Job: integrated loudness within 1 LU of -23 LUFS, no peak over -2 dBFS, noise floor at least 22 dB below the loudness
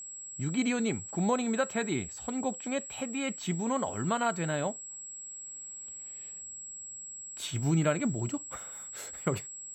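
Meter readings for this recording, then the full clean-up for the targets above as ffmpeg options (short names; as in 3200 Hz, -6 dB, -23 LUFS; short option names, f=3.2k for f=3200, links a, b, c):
steady tone 7700 Hz; tone level -41 dBFS; loudness -33.0 LUFS; peak -16.0 dBFS; loudness target -23.0 LUFS
-> -af "bandreject=f=7.7k:w=30"
-af "volume=10dB"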